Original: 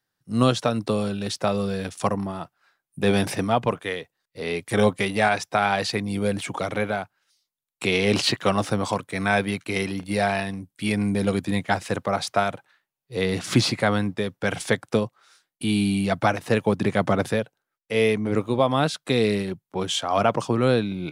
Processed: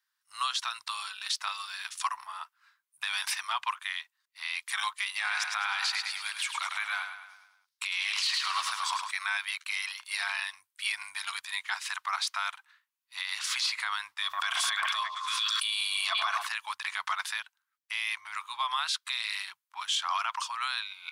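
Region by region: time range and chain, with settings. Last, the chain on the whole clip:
0:05.14–0:09.11: low-shelf EQ 140 Hz −9 dB + repeating echo 104 ms, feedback 52%, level −7.5 dB
0:14.22–0:16.47: hollow resonant body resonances 680/1,100/3,400 Hz, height 12 dB, ringing for 25 ms + echo through a band-pass that steps 112 ms, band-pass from 790 Hz, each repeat 0.7 octaves, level −7 dB + background raised ahead of every attack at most 32 dB per second
whole clip: elliptic high-pass filter 1,000 Hz, stop band 50 dB; dynamic equaliser 4,100 Hz, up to +4 dB, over −44 dBFS, Q 1.1; brickwall limiter −19.5 dBFS

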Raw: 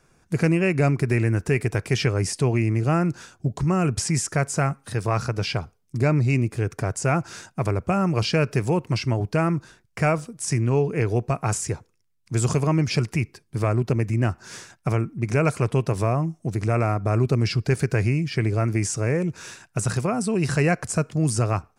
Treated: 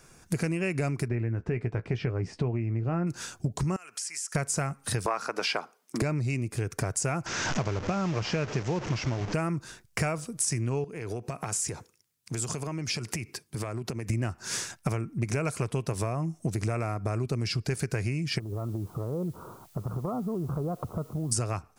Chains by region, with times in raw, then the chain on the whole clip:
0:01.08–0:03.07: head-to-tape spacing loss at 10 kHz 40 dB + double-tracking delay 17 ms −11 dB
0:03.76–0:04.35: high-pass filter 1,200 Hz + downward compressor 4 to 1, threshold −45 dBFS + parametric band 3,700 Hz −4 dB 0.22 octaves
0:05.06–0:06.02: high-pass filter 230 Hz 24 dB per octave + parametric band 1,100 Hz +11 dB 2.5 octaves
0:07.26–0:09.34: linear delta modulator 32 kbit/s, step −25.5 dBFS + parametric band 4,100 Hz −9.5 dB 0.93 octaves
0:10.84–0:14.10: high-pass filter 130 Hz 6 dB per octave + downward compressor 10 to 1, threshold −33 dBFS
0:18.38–0:21.31: Butterworth low-pass 1,300 Hz 96 dB per octave + downward compressor, threshold −32 dBFS + background noise white −70 dBFS
whole clip: high-shelf EQ 4,100 Hz +8.5 dB; downward compressor 12 to 1, threshold −29 dBFS; level +3.5 dB

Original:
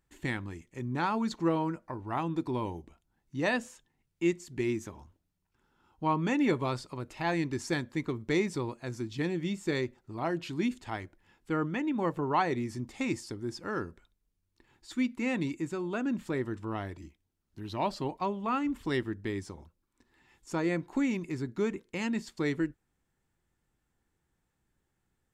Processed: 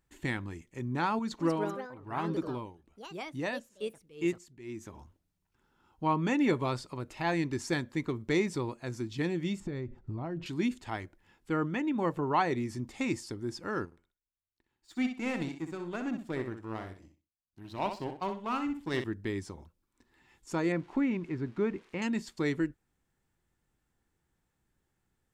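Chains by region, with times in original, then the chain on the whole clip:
0:01.19–0:04.94: shaped tremolo triangle 1.1 Hz, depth 90% + delay with pitch and tempo change per echo 215 ms, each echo +4 semitones, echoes 2, each echo −6 dB
0:09.60–0:10.46: RIAA equalisation playback + downward compressor 10 to 1, threshold −32 dBFS
0:13.85–0:19.04: power curve on the samples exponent 1.4 + repeating echo 63 ms, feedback 22%, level −8 dB
0:20.72–0:22.02: spike at every zero crossing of −37.5 dBFS + low-pass filter 2,300 Hz
whole clip: no processing

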